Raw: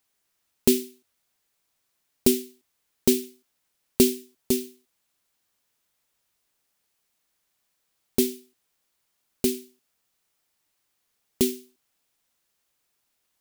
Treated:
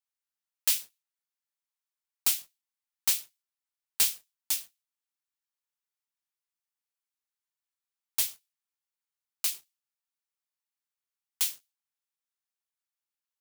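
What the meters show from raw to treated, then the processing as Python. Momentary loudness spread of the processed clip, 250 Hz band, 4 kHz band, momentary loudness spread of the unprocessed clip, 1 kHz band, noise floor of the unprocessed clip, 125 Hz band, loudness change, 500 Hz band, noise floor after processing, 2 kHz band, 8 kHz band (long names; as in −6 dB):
9 LU, below −35 dB, 0.0 dB, 19 LU, −1.0 dB, −76 dBFS, below −20 dB, −3.5 dB, −32.5 dB, below −85 dBFS, +0.5 dB, +0.5 dB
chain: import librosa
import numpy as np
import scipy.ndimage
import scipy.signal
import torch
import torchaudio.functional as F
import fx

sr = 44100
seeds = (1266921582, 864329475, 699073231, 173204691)

y = scipy.signal.sosfilt(scipy.signal.cheby1(5, 1.0, 820.0, 'highpass', fs=sr, output='sos'), x)
y = fx.leveller(y, sr, passes=3)
y = fx.upward_expand(y, sr, threshold_db=-25.0, expansion=1.5)
y = F.gain(torch.from_numpy(y), -6.5).numpy()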